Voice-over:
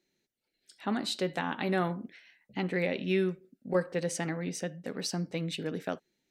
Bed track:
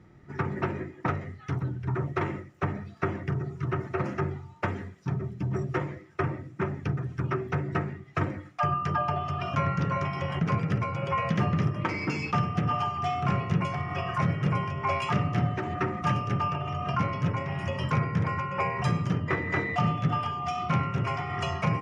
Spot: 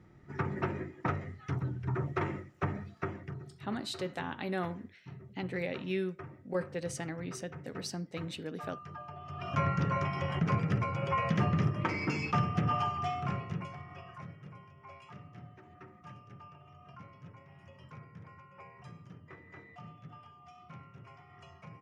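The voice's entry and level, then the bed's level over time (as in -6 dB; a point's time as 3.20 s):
2.80 s, -5.5 dB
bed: 2.83 s -4 dB
3.64 s -18 dB
9.14 s -18 dB
9.59 s -3 dB
12.90 s -3 dB
14.52 s -24 dB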